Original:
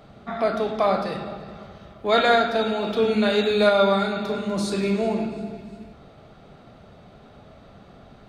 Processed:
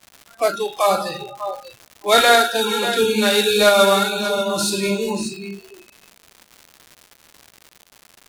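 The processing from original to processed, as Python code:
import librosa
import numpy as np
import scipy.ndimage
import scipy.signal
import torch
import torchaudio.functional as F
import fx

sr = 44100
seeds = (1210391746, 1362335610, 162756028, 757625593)

p1 = fx.cvsd(x, sr, bps=64000)
p2 = fx.low_shelf(p1, sr, hz=370.0, db=-7.0)
p3 = np.sign(p2) * np.maximum(np.abs(p2) - 10.0 ** (-35.5 / 20.0), 0.0)
p4 = p2 + F.gain(torch.from_numpy(p3), -10.0).numpy()
p5 = fx.high_shelf(p4, sr, hz=5200.0, db=11.0)
p6 = fx.echo_feedback(p5, sr, ms=587, feedback_pct=23, wet_db=-9.0)
p7 = fx.noise_reduce_blind(p6, sr, reduce_db=30)
p8 = fx.dmg_crackle(p7, sr, seeds[0], per_s=250.0, level_db=-35.0)
y = F.gain(torch.from_numpy(p8), 4.0).numpy()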